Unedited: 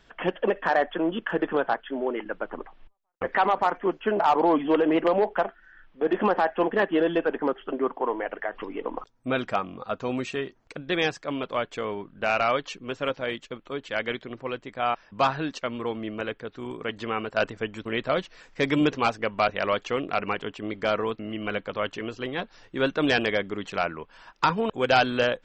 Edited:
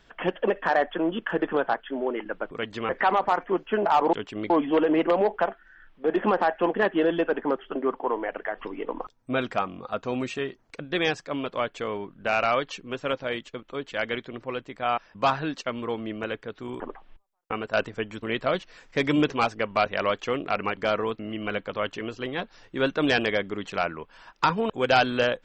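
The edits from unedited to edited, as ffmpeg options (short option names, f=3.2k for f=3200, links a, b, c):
-filter_complex "[0:a]asplit=8[a][b][c][d][e][f][g][h];[a]atrim=end=2.512[i];[b]atrim=start=16.768:end=17.152[j];[c]atrim=start=3.228:end=4.472[k];[d]atrim=start=20.398:end=20.772[l];[e]atrim=start=4.468:end=16.772[m];[f]atrim=start=2.508:end=3.232[n];[g]atrim=start=17.148:end=20.402[o];[h]atrim=start=20.768[p];[i][j]acrossfade=d=0.004:c1=hsin:c2=hsin[q];[q][k]acrossfade=d=0.004:c1=hsin:c2=hsin[r];[r][l]acrossfade=d=0.004:c1=hsin:c2=hsin[s];[s][m]acrossfade=d=0.004:c1=hsin:c2=hsin[t];[t][n]acrossfade=d=0.004:c1=hsin:c2=hsin[u];[u][o]acrossfade=d=0.004:c1=hsin:c2=hsin[v];[v][p]acrossfade=d=0.004:c1=hsin:c2=hsin"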